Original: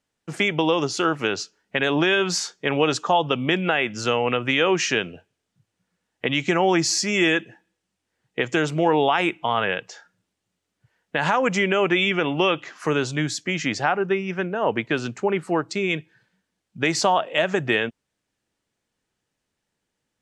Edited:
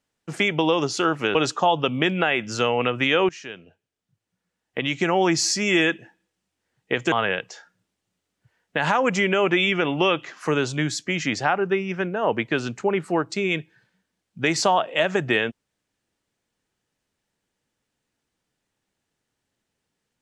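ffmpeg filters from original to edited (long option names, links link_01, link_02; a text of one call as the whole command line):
ffmpeg -i in.wav -filter_complex "[0:a]asplit=4[link_01][link_02][link_03][link_04];[link_01]atrim=end=1.352[link_05];[link_02]atrim=start=2.818:end=4.76,asetpts=PTS-STARTPTS,afade=type=out:start_time=1.938:duration=0.004:curve=hsin:silence=0.112202[link_06];[link_03]atrim=start=4.76:end=8.592,asetpts=PTS-STARTPTS,afade=type=in:duration=2.11:silence=0.112202[link_07];[link_04]atrim=start=9.508[link_08];[link_06][link_07]concat=n=2:v=0:a=1[link_09];[link_05][link_09]acrossfade=duration=0.004:curve1=hsin:curve2=hsin[link_10];[link_10][link_08]acrossfade=duration=0.004:curve1=hsin:curve2=hsin" out.wav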